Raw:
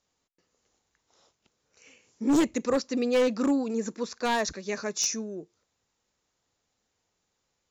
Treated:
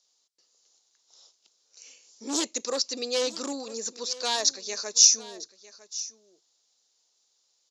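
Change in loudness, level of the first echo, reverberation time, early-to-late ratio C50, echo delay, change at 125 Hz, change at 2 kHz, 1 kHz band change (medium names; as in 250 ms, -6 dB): +2.5 dB, -17.5 dB, no reverb, no reverb, 953 ms, under -15 dB, -4.0 dB, -3.5 dB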